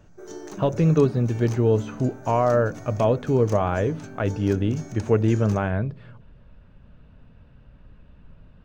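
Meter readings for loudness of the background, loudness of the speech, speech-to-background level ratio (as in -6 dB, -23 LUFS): -40.0 LUFS, -23.0 LUFS, 17.0 dB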